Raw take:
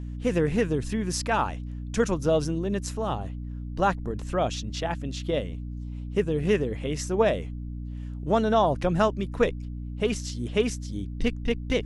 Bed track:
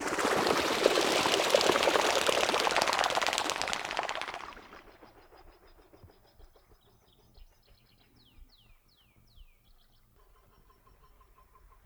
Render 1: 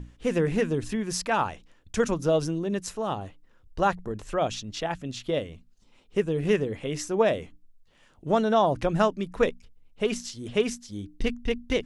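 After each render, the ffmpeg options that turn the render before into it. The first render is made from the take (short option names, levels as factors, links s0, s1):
-af "bandreject=f=60:t=h:w=6,bandreject=f=120:t=h:w=6,bandreject=f=180:t=h:w=6,bandreject=f=240:t=h:w=6,bandreject=f=300:t=h:w=6"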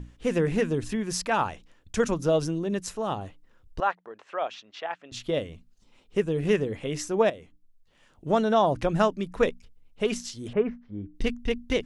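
-filter_complex "[0:a]asettb=1/sr,asplit=3[s0][s1][s2];[s0]atrim=end=3.804[s3];[s1]atrim=start=3.8:end=5.12,asetpts=PTS-STARTPTS,afade=t=in:d=0.004:c=qsin,afade=t=out:st=1.316:d=0.004:c=qsin,highpass=680,lowpass=2600[s4];[s2]atrim=start=5.116[s5];[s3][s4]acrossfade=d=0.004:c1=hsin:c2=qsin[s6];[s6][s5]acrossfade=d=0.004:c1=qsin:c2=hsin,asettb=1/sr,asplit=3[s7][s8][s9];[s7]atrim=end=10.534[s10];[s8]atrim=start=10.53:end=11.15,asetpts=PTS-STARTPTS,afade=t=in:d=0.004:c=qsin,afade=t=out:st=0.616:d=0.004:c=qsin,lowpass=f=1800:w=0.5412,lowpass=f=1800:w=1.3066[s11];[s9]atrim=start=11.146[s12];[s10][s11]acrossfade=d=0.004:c1=hsin:c2=qsin[s13];[s13][s12]acrossfade=d=0.004:c1=qsin:c2=hsin,asplit=2[s14][s15];[s14]atrim=end=7.3,asetpts=PTS-STARTPTS,afade=t=out:st=7.296:d=0.004:c=hsin:silence=0.199526[s16];[s15]atrim=start=7.3,asetpts=PTS-STARTPTS,afade=t=in:d=1.18:c=qsin:silence=0.199526[s17];[s16][s17]concat=n=2:v=0:a=1"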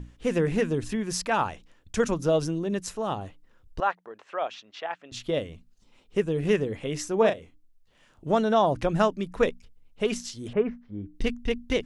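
-filter_complex "[0:a]asettb=1/sr,asplit=3[s0][s1][s2];[s0]atrim=end=7.184[s3];[s1]atrim=start=7.18:end=8.28,asetpts=PTS-STARTPTS,afade=t=in:d=0.004:c=qsin,afade=t=out:st=1.096:d=0.004:c=qsin,asplit=2[s4][s5];[s5]adelay=36,volume=0.447[s6];[s4][s6]amix=inputs=2:normalize=0,atrim=end_sample=48510[s7];[s2]atrim=start=8.276[s8];[s3][s7]acrossfade=d=0.004:c1=hsin:c2=qsin[s9];[s9][s8]acrossfade=d=0.004:c1=qsin:c2=hsin"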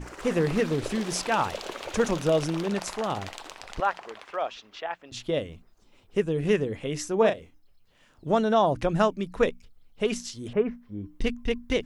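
-filter_complex "[1:a]volume=0.282[s0];[0:a][s0]amix=inputs=2:normalize=0"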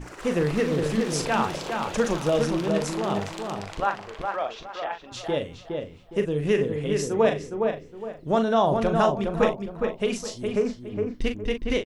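-filter_complex "[0:a]asplit=2[s0][s1];[s1]adelay=40,volume=0.398[s2];[s0][s2]amix=inputs=2:normalize=0,asplit=2[s3][s4];[s4]adelay=413,lowpass=f=2100:p=1,volume=0.631,asplit=2[s5][s6];[s6]adelay=413,lowpass=f=2100:p=1,volume=0.32,asplit=2[s7][s8];[s8]adelay=413,lowpass=f=2100:p=1,volume=0.32,asplit=2[s9][s10];[s10]adelay=413,lowpass=f=2100:p=1,volume=0.32[s11];[s3][s5][s7][s9][s11]amix=inputs=5:normalize=0"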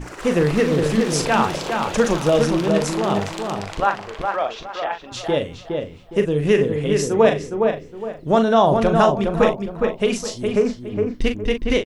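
-af "volume=2,alimiter=limit=0.708:level=0:latency=1"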